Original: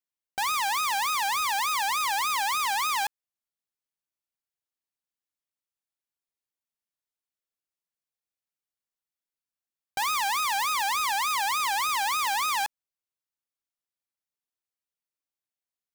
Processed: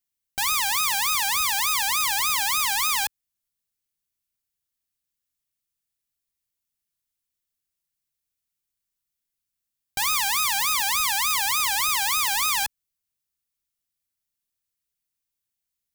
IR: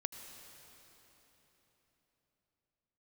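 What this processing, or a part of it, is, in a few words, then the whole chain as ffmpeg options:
smiley-face EQ: -af "lowshelf=f=150:g=8.5,equalizer=f=660:t=o:w=2.4:g=-9,highshelf=f=8.4k:g=6,volume=5.5dB"

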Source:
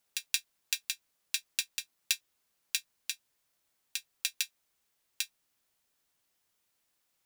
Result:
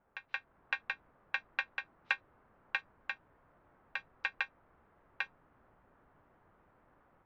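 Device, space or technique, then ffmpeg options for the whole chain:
action camera in a waterproof case: -af "lowpass=f=1.4k:w=0.5412,lowpass=f=1.4k:w=1.3066,lowshelf=f=130:g=5.5,dynaudnorm=f=300:g=3:m=8dB,volume=13.5dB" -ar 22050 -c:a aac -b:a 48k

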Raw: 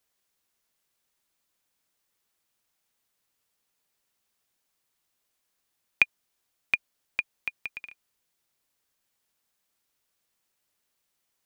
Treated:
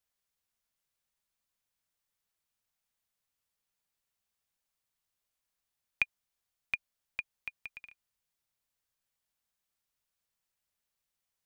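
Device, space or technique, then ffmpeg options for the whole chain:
low shelf boost with a cut just above: -af "lowshelf=f=110:g=7.5,equalizer=f=330:t=o:w=0.83:g=-5.5,volume=-8.5dB"

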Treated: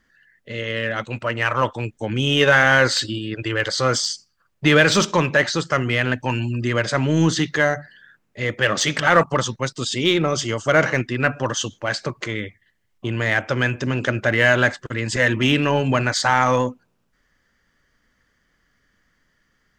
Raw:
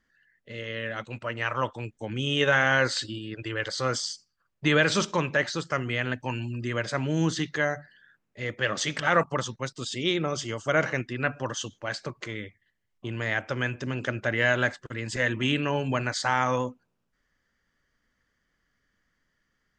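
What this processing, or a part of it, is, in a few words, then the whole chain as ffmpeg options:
parallel distortion: -filter_complex "[0:a]asplit=2[a][b];[b]asoftclip=type=hard:threshold=-25dB,volume=-8dB[c];[a][c]amix=inputs=2:normalize=0,volume=6dB"

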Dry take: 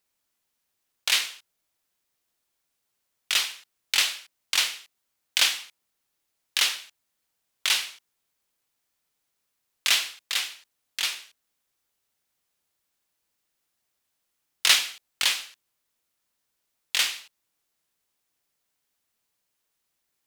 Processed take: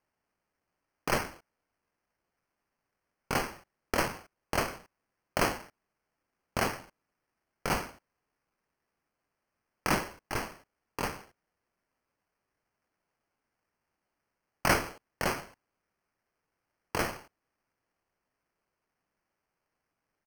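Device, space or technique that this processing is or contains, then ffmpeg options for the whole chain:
crushed at another speed: -af "asetrate=35280,aresample=44100,acrusher=samples=15:mix=1:aa=0.000001,asetrate=55125,aresample=44100,volume=-6dB"

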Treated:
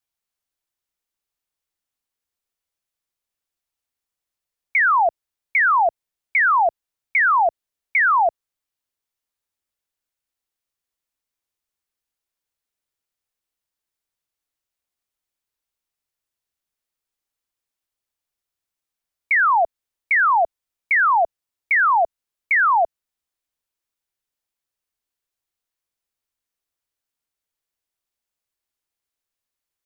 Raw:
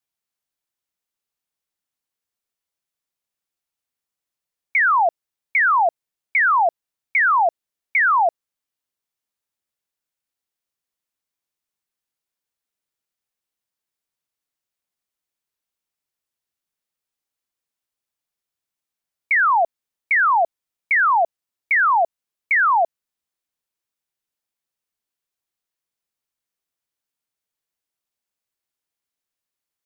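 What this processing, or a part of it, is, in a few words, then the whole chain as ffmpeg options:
low shelf boost with a cut just above: -af "lowshelf=f=94:g=7.5,equalizer=f=170:t=o:w=0.91:g=-4.5"

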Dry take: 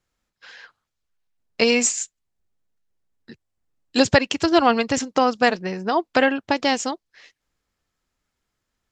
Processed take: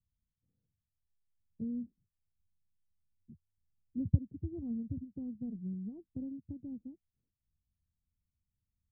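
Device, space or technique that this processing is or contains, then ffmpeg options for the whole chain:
the neighbour's flat through the wall: -af "lowpass=f=200:w=0.5412,lowpass=f=200:w=1.3066,equalizer=f=81:t=o:w=0.96:g=8,volume=-6.5dB"

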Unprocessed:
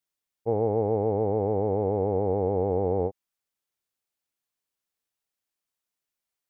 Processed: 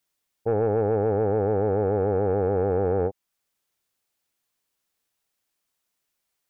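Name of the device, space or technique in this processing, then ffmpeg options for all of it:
soft clipper into limiter: -af "asoftclip=type=tanh:threshold=-17.5dB,alimiter=limit=-23dB:level=0:latency=1:release=383,volume=8dB"

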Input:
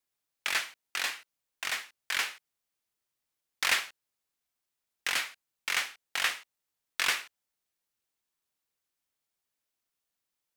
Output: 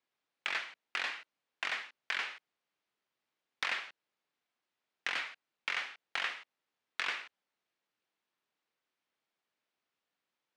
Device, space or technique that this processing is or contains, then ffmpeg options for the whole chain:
AM radio: -af "highpass=180,lowpass=3.3k,acompressor=threshold=-36dB:ratio=6,asoftclip=type=tanh:threshold=-23.5dB,volume=4.5dB"

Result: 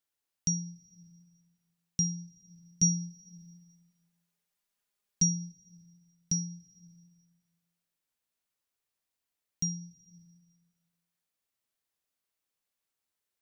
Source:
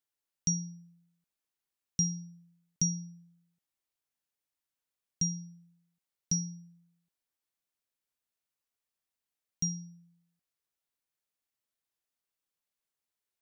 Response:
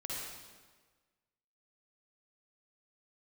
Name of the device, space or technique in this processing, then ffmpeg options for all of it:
ducked reverb: -filter_complex "[0:a]asplit=3[a][b][c];[1:a]atrim=start_sample=2205[d];[b][d]afir=irnorm=-1:irlink=0[e];[c]apad=whole_len=591512[f];[e][f]sidechaincompress=threshold=-55dB:ratio=4:attack=43:release=296,volume=-7dB[g];[a][g]amix=inputs=2:normalize=0,asettb=1/sr,asplit=3[h][i][j];[h]atrim=end=2.824[k];[i]atrim=start=2.82:end=5.52,asetpts=PTS-STARTPTS,afade=t=in:d=0.004:c=qsin,afade=t=out:st=2.696:d=0.004:c=qsin,aecho=1:1:4.9:0.88,atrim=end_sample=119070[l];[j]atrim=start=5.516[m];[k][l]acrossfade=d=0.004:c1=hsin:c2=qsin[n];[n][m]acrossfade=d=0.004:c1=qsin:c2=hsin"

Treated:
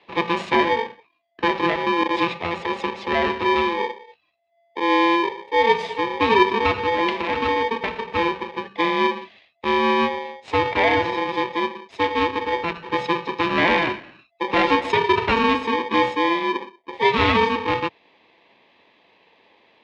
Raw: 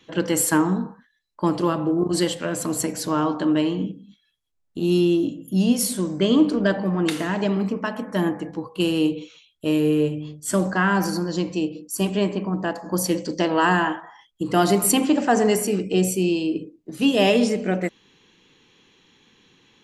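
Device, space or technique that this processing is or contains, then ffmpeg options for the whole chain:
ring modulator pedal into a guitar cabinet: -af "aeval=exprs='val(0)*sgn(sin(2*PI*680*n/s))':c=same,highpass=95,equalizer=f=150:t=q:w=4:g=-5,equalizer=f=670:t=q:w=4:g=8,equalizer=f=1.4k:t=q:w=4:g=-10,equalizer=f=2k:t=q:w=4:g=4,lowpass=f=3.5k:w=0.5412,lowpass=f=3.5k:w=1.3066,volume=1dB"

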